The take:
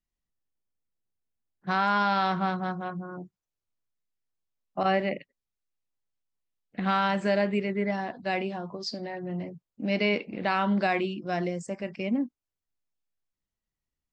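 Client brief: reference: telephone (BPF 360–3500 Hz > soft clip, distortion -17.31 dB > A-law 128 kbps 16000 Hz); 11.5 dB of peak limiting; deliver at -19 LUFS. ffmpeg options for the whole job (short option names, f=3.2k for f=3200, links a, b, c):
-af "alimiter=limit=-24dB:level=0:latency=1,highpass=360,lowpass=3.5k,asoftclip=threshold=-30dB,volume=20.5dB" -ar 16000 -c:a pcm_alaw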